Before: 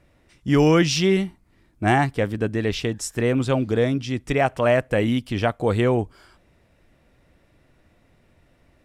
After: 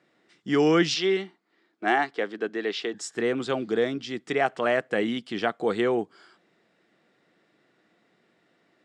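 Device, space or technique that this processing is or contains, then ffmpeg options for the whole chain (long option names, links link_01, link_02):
television speaker: -filter_complex "[0:a]asettb=1/sr,asplit=3[link_01][link_02][link_03];[link_01]atrim=end=0.944[link_04];[link_02]atrim=start=0.94:end=2.94,asetpts=PTS-STARTPTS,afade=type=in:duration=0.004:curve=qsin,afade=type=out:start_time=1.996:duration=0.004:curve=qsin,acrossover=split=260 6600:gain=0.112 1 0.2[link_05][link_06][link_07];[link_05][link_06][link_07]amix=inputs=3:normalize=0[link_08];[link_03]atrim=start=2.936[link_09];[link_04][link_08]acrossfade=duration=0.004:curve1=hsin:curve2=qsin[link_10];[link_10][link_09]acrossfade=duration=0.004:curve1=qsin:curve2=hsin,highpass=frequency=210:width=0.5412,highpass=frequency=210:width=1.3066,equalizer=frequency=260:width_type=q:width=4:gain=-8,equalizer=frequency=570:width_type=q:width=4:gain=-8,equalizer=frequency=960:width_type=q:width=4:gain=-6,equalizer=frequency=2500:width_type=q:width=4:gain=-6,equalizer=frequency=5900:width_type=q:width=4:gain=-6,lowpass=frequency=7100:width=0.5412,lowpass=frequency=7100:width=1.3066"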